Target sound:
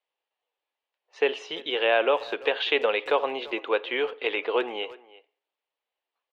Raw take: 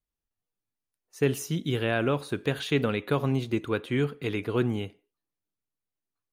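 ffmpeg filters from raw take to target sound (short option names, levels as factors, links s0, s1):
-filter_complex "[0:a]asplit=2[s0][s1];[s1]acompressor=threshold=0.0178:ratio=6,volume=1[s2];[s0][s2]amix=inputs=2:normalize=0,highpass=f=470:w=0.5412,highpass=f=470:w=1.3066,equalizer=f=520:t=q:w=4:g=4,equalizer=f=860:t=q:w=4:g=5,equalizer=f=1400:t=q:w=4:g=-5,equalizer=f=2900:t=q:w=4:g=4,lowpass=f=3700:w=0.5412,lowpass=f=3700:w=1.3066,asplit=2[s3][s4];[s4]adelay=340,highpass=300,lowpass=3400,asoftclip=type=hard:threshold=0.0841,volume=0.112[s5];[s3][s5]amix=inputs=2:normalize=0,volume=1.58"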